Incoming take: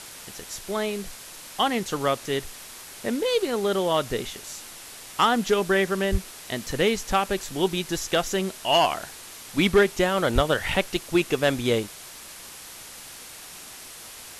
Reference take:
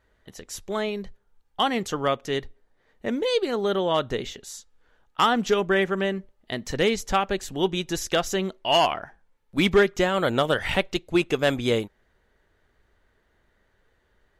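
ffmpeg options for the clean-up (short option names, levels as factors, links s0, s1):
-filter_complex "[0:a]asplit=3[s0][s1][s2];[s0]afade=t=out:st=6.11:d=0.02[s3];[s1]highpass=f=140:w=0.5412,highpass=f=140:w=1.3066,afade=t=in:st=6.11:d=0.02,afade=t=out:st=6.23:d=0.02[s4];[s2]afade=t=in:st=6.23:d=0.02[s5];[s3][s4][s5]amix=inputs=3:normalize=0,asplit=3[s6][s7][s8];[s6]afade=t=out:st=10.34:d=0.02[s9];[s7]highpass=f=140:w=0.5412,highpass=f=140:w=1.3066,afade=t=in:st=10.34:d=0.02,afade=t=out:st=10.46:d=0.02[s10];[s8]afade=t=in:st=10.46:d=0.02[s11];[s9][s10][s11]amix=inputs=3:normalize=0,afwtdn=0.01"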